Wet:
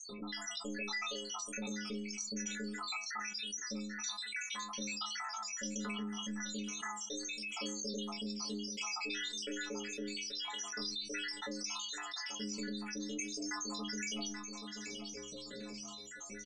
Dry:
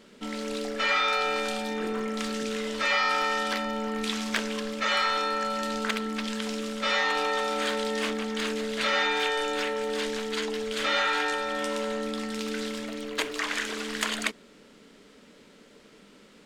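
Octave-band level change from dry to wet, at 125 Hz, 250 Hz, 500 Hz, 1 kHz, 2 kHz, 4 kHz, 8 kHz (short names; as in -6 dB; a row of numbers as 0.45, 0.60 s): n/a, -9.0 dB, -18.0 dB, -17.0 dB, -14.0 dB, -9.0 dB, 0.0 dB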